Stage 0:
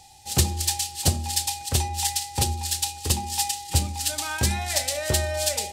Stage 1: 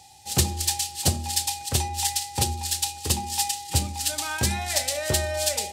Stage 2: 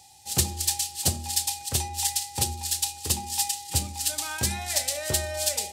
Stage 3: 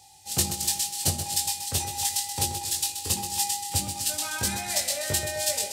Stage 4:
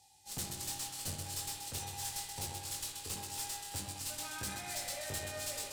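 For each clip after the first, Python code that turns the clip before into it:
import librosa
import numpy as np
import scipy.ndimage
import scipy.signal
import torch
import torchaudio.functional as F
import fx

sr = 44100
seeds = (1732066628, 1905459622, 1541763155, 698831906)

y1 = scipy.signal.sosfilt(scipy.signal.butter(2, 76.0, 'highpass', fs=sr, output='sos'), x)
y2 = fx.high_shelf(y1, sr, hz=5000.0, db=6.0)
y2 = y2 * librosa.db_to_amplitude(-4.5)
y3 = fx.doubler(y2, sr, ms=20.0, db=-4.0)
y3 = fx.echo_feedback(y3, sr, ms=129, feedback_pct=49, wet_db=-8.5)
y3 = y3 * librosa.db_to_amplitude(-2.0)
y4 = fx.tube_stage(y3, sr, drive_db=26.0, bias=0.6)
y4 = fx.rev_spring(y4, sr, rt60_s=2.0, pass_ms=(53,), chirp_ms=30, drr_db=2.5)
y4 = y4 * librosa.db_to_amplitude(-8.5)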